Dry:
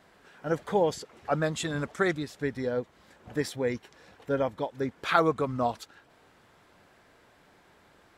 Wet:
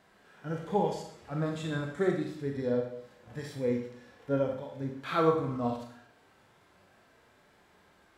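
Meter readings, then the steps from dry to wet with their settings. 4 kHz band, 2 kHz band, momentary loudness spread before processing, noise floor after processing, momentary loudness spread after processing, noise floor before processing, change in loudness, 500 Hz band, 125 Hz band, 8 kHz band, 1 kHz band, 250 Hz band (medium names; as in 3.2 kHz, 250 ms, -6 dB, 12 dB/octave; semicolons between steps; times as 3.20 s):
-7.0 dB, -8.0 dB, 14 LU, -63 dBFS, 16 LU, -61 dBFS, -2.5 dB, -2.0 dB, 0.0 dB, under -10 dB, -4.5 dB, -0.5 dB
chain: harmonic-percussive split percussive -17 dB; Schroeder reverb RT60 0.66 s, combs from 29 ms, DRR 2.5 dB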